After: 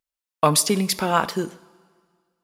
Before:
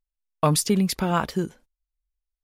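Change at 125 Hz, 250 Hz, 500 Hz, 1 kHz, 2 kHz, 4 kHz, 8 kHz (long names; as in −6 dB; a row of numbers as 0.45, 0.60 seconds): −2.5, −1.5, +3.0, +4.5, +5.0, +5.0, +5.0 decibels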